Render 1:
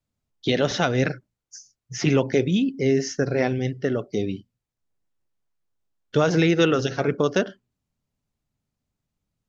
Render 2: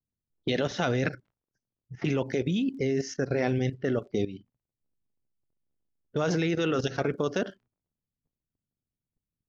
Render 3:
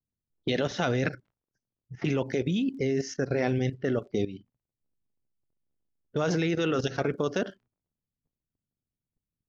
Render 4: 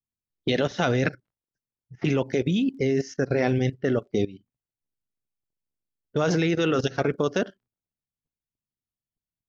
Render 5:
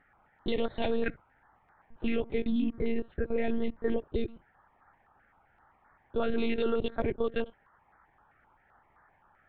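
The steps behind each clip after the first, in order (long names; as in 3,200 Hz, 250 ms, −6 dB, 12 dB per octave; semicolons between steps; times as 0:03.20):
surface crackle 50 per second −49 dBFS; low-pass that shuts in the quiet parts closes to 310 Hz, open at −21 dBFS; output level in coarse steps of 13 dB
no processing that can be heard
expander for the loud parts 1.5 to 1, over −49 dBFS; level +4.5 dB
noise in a band 640–1,800 Hz −57 dBFS; one-pitch LPC vocoder at 8 kHz 230 Hz; notch on a step sequencer 7.7 Hz 970–2,800 Hz; level −4.5 dB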